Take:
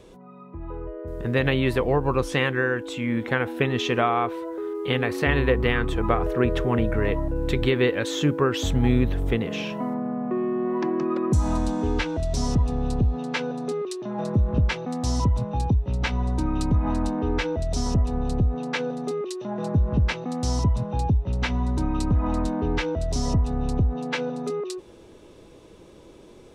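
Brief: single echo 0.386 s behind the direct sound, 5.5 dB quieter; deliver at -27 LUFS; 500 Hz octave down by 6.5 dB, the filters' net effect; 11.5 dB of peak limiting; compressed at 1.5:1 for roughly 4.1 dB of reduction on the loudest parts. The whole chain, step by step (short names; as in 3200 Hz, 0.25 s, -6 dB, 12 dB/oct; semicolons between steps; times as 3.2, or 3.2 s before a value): bell 500 Hz -8.5 dB; compressor 1.5:1, threshold -28 dBFS; limiter -25 dBFS; echo 0.386 s -5.5 dB; gain +6 dB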